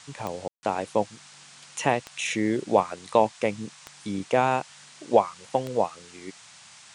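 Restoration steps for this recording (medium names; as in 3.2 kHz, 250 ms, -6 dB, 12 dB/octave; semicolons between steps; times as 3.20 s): de-click; room tone fill 0.48–0.63 s; noise print and reduce 20 dB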